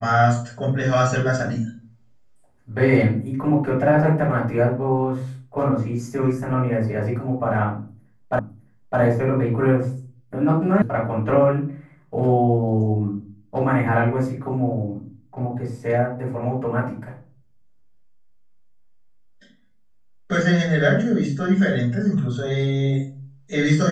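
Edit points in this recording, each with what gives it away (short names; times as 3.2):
8.39 repeat of the last 0.61 s
10.82 sound cut off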